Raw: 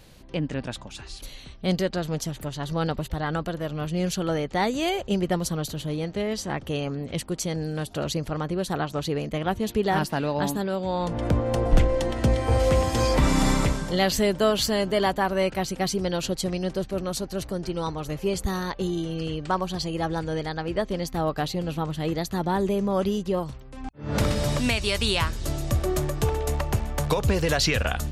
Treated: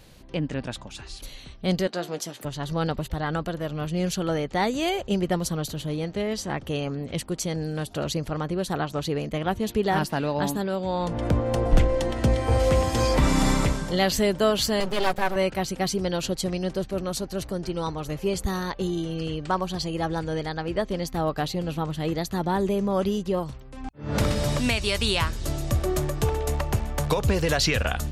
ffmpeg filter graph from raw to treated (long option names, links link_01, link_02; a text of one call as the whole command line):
ffmpeg -i in.wav -filter_complex "[0:a]asettb=1/sr,asplit=3[link_01][link_02][link_03];[link_01]atrim=end=1.874[link_04];[link_02]atrim=start=1.87:end=2.45,asetpts=PTS-STARTPTS,afade=type=in:duration=0.004:curve=qsin,afade=type=out:start_time=0.576:duration=0.004:curve=qsin,highpass=280,asplit=2[link_05][link_06];[link_06]adelay=17,volume=-12dB[link_07];[link_05][link_07]amix=inputs=2:normalize=0,atrim=end_sample=25578,bandreject=frequency=357.3:width_type=h:width=4,bandreject=frequency=714.6:width_type=h:width=4,bandreject=frequency=1071.9:width_type=h:width=4,bandreject=frequency=1429.2:width_type=h:width=4,bandreject=frequency=1786.5:width_type=h:width=4,bandreject=frequency=2143.8:width_type=h:width=4,bandreject=frequency=2501.1:width_type=h:width=4,bandreject=frequency=2858.4:width_type=h:width=4,bandreject=frequency=3215.7:width_type=h:width=4,bandreject=frequency=3573:width_type=h:width=4,bandreject=frequency=3930.3:width_type=h:width=4,bandreject=frequency=4287.6:width_type=h:width=4,bandreject=frequency=4644.9:width_type=h:width=4,bandreject=frequency=5002.2:width_type=h:width=4,bandreject=frequency=5359.5:width_type=h:width=4,bandreject=frequency=5716.8:width_type=h:width=4,bandreject=frequency=6074.1:width_type=h:width=4[link_08];[link_03]atrim=start=2.446[link_09];[link_04][link_08]acrossfade=duration=0.004:curve1=hsin:curve2=qsin[link_10];[link_10][link_09]acrossfade=duration=0.004:curve1=qsin:curve2=hsin,asettb=1/sr,asplit=3[link_11][link_12][link_13];[link_11]atrim=end=14.804[link_14];[link_12]atrim=start=14.8:end=15.36,asetpts=PTS-STARTPTS,afade=type=in:duration=0.004:curve=qsin,afade=type=out:start_time=0.556:duration=0.004:curve=qsin,highpass=63,aecho=1:1:5.4:0.98,atrim=end_sample=24696,aeval=exprs='max(val(0),0)':channel_layout=same[link_15];[link_13]atrim=start=15.356[link_16];[link_14][link_15]acrossfade=duration=0.004:curve1=hsin:curve2=qsin[link_17];[link_17][link_16]acrossfade=duration=0.004:curve1=qsin:curve2=hsin" out.wav